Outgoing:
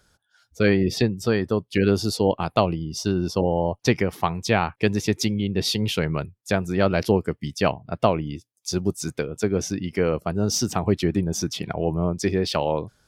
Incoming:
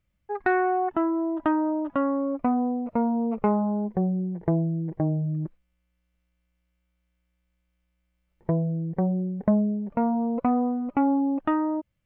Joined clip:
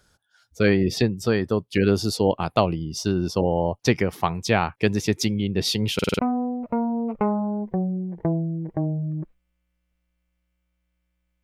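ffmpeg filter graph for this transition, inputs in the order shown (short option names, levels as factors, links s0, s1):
-filter_complex "[0:a]apad=whole_dur=11.43,atrim=end=11.43,asplit=5[s0][s1][s2][s3][s4];[s0]atrim=end=5.992[s5];[s1]atrim=start=5.938:end=5.992[s6];[s2]atrim=start=5.938:end=5.992[s7];[s3]atrim=start=5.938:end=5.992[s8];[s4]atrim=start=5.938:end=5.992[s9];[1:a]atrim=start=2.418:end=7.66[s10];[s5][s6]acrossfade=d=0.004:c1=hsin:c2=hsin[s11];[s11][s7]acrossfade=d=0.004:c1=hsin:c2=hsin[s12];[s12][s8]acrossfade=d=0.004:c1=hsin:c2=hsin[s13];[s13][s9]acrossfade=d=0.004:c1=hsin:c2=hsin[s14];[s14][s10]acrossfade=d=0.004:c1=hsin:c2=hsin"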